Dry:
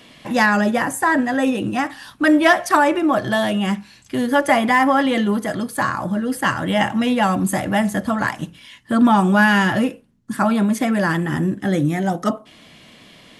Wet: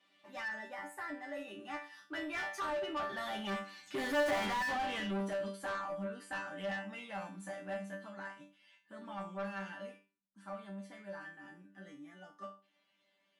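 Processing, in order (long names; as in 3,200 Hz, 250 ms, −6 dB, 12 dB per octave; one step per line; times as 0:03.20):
source passing by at 0:04.26, 16 m/s, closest 2.1 metres
resonators tuned to a chord G3 fifth, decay 0.31 s
mid-hump overdrive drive 36 dB, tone 2,500 Hz, clips at −23 dBFS
level −4.5 dB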